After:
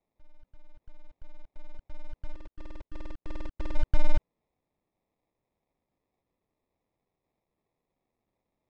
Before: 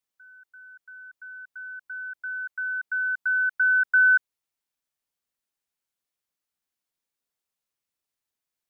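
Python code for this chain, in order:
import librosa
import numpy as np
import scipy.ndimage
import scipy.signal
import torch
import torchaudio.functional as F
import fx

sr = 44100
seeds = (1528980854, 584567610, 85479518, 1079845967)

y = fx.median_filter(x, sr, points=25, at=(2.33, 3.74), fade=0.02)
y = fx.sample_hold(y, sr, seeds[0], rate_hz=1500.0, jitter_pct=0)
y = fx.air_absorb(y, sr, metres=130.0)
y = y * librosa.db_to_amplitude(4.0)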